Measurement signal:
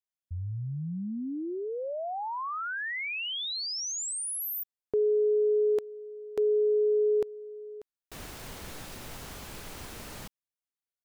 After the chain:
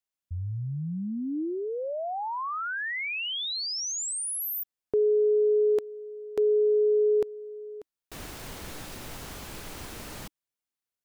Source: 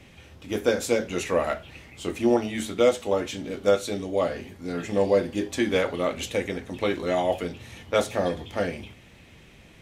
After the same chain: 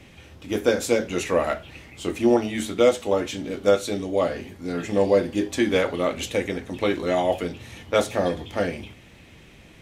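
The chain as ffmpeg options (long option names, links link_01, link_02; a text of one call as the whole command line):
ffmpeg -i in.wav -af "equalizer=frequency=310:width=4.6:gain=2.5,volume=2dB" out.wav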